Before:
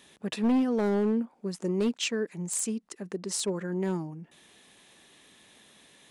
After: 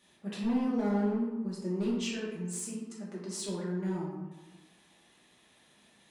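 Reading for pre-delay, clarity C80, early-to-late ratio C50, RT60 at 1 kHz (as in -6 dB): 3 ms, 4.0 dB, 1.0 dB, 1.2 s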